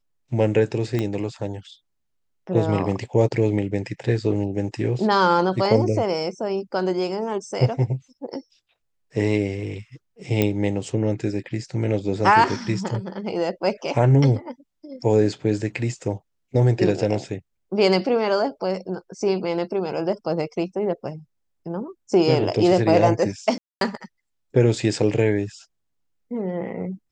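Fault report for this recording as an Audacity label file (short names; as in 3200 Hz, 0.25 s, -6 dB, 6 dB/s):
0.990000	0.990000	pop -12 dBFS
10.420000	10.420000	pop -7 dBFS
23.580000	23.810000	gap 0.232 s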